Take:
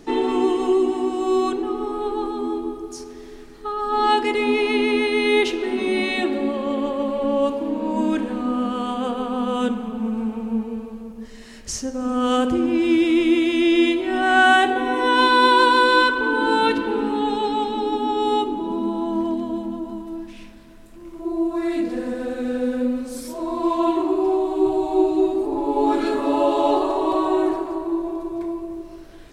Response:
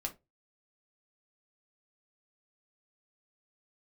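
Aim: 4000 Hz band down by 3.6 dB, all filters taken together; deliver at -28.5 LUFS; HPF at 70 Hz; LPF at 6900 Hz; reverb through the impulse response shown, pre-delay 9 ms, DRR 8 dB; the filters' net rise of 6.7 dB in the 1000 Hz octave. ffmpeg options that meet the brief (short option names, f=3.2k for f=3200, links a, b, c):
-filter_complex "[0:a]highpass=70,lowpass=6.9k,equalizer=f=1k:t=o:g=8,equalizer=f=4k:t=o:g=-5,asplit=2[a][b];[1:a]atrim=start_sample=2205,adelay=9[c];[b][c]afir=irnorm=-1:irlink=0,volume=-8.5dB[d];[a][d]amix=inputs=2:normalize=0,volume=-12dB"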